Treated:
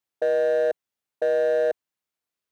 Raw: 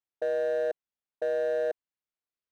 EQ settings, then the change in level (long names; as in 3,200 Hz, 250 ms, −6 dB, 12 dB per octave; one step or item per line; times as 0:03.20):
high-pass filter 67 Hz
+6.5 dB